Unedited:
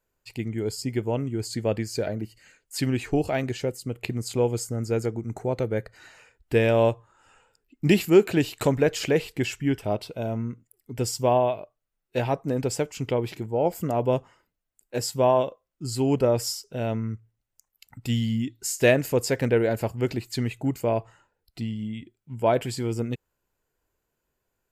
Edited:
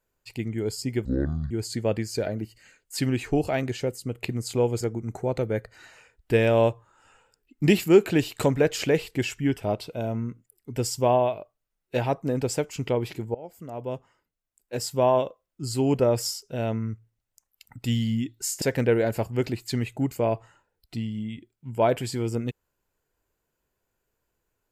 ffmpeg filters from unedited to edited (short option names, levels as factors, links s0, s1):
-filter_complex "[0:a]asplit=6[s0][s1][s2][s3][s4][s5];[s0]atrim=end=1.054[s6];[s1]atrim=start=1.05:end=1.31,asetpts=PTS-STARTPTS,asetrate=25137,aresample=44100[s7];[s2]atrim=start=1.306:end=4.612[s8];[s3]atrim=start=5.018:end=13.56,asetpts=PTS-STARTPTS,afade=t=out:st=8.538:d=0.004:c=hsin:silence=0.0891251[s9];[s4]atrim=start=13.56:end=18.832,asetpts=PTS-STARTPTS,afade=t=in:d=1.88:silence=0.0891251[s10];[s5]atrim=start=19.258[s11];[s6][s7]acrossfade=d=0.004:c1=hsin:c2=hsin[s12];[s12][s8]acrossfade=d=0.004:c1=hsin:c2=hsin[s13];[s9][s10]concat=n=2:v=0:a=1[s14];[s13][s14]acrossfade=d=0.004:c1=hsin:c2=hsin[s15];[s15][s11]acrossfade=d=0.004:c1=hsin:c2=hsin"